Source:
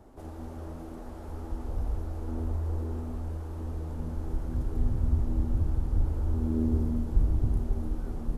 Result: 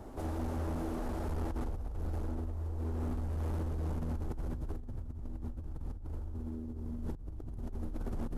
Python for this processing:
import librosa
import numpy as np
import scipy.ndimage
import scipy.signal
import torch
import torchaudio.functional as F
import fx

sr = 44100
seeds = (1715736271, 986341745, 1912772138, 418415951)

y = fx.over_compress(x, sr, threshold_db=-36.0, ratio=-1.0)
y = np.clip(10.0 ** (31.5 / 20.0) * y, -1.0, 1.0) / 10.0 ** (31.5 / 20.0)